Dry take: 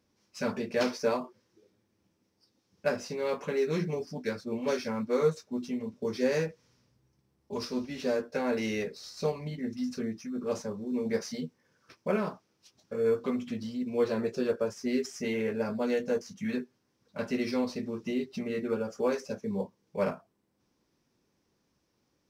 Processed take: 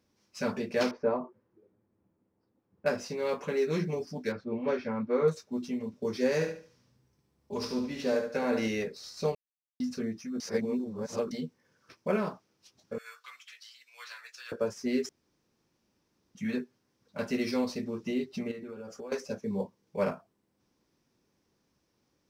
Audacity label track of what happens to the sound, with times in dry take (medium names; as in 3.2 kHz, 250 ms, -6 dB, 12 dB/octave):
0.910000	2.860000	low-pass 1.2 kHz
4.320000	5.280000	low-pass 2.3 kHz
6.340000	8.680000	feedback delay 72 ms, feedback 29%, level -7 dB
9.350000	9.800000	mute
10.400000	11.310000	reverse
12.980000	14.520000	high-pass 1.4 kHz 24 dB/octave
15.090000	16.350000	room tone
17.180000	17.840000	treble shelf 5.8 kHz +5 dB
18.510000	19.120000	compression 16:1, threshold -38 dBFS